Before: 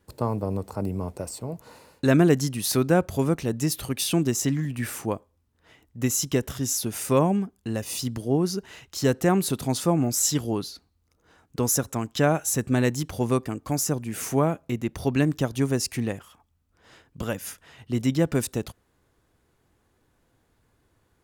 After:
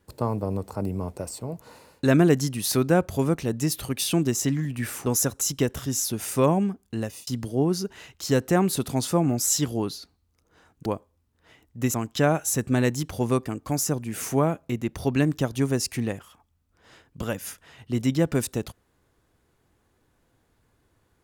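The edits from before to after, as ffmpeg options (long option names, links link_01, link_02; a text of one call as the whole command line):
ffmpeg -i in.wav -filter_complex "[0:a]asplit=6[link_01][link_02][link_03][link_04][link_05][link_06];[link_01]atrim=end=5.062[link_07];[link_02]atrim=start=11.588:end=11.942[link_08];[link_03]atrim=start=6.138:end=8,asetpts=PTS-STARTPTS,afade=type=out:start_time=1.602:duration=0.26[link_09];[link_04]atrim=start=8:end=11.592,asetpts=PTS-STARTPTS,afade=type=in:duration=0.004:curve=hsin[link_10];[link_05]atrim=start=5.058:end=6.142[link_11];[link_06]atrim=start=11.938[link_12];[link_07][link_08]acrossfade=duration=0.004:curve1=hsin:curve2=hsin[link_13];[link_09][link_10]concat=n=2:v=0:a=1[link_14];[link_13][link_14]acrossfade=duration=0.004:curve1=hsin:curve2=hsin[link_15];[link_15][link_11]acrossfade=duration=0.004:curve1=hsin:curve2=hsin[link_16];[link_16][link_12]acrossfade=duration=0.004:curve1=hsin:curve2=hsin" out.wav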